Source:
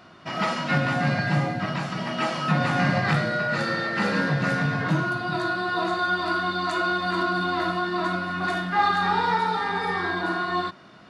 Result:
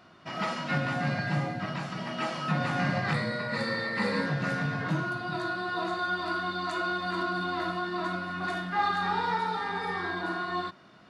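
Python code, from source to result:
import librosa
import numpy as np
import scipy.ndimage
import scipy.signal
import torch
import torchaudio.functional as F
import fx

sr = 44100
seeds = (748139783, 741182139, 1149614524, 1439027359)

y = fx.ripple_eq(x, sr, per_octave=0.96, db=10, at=(3.13, 4.26))
y = y * 10.0 ** (-6.0 / 20.0)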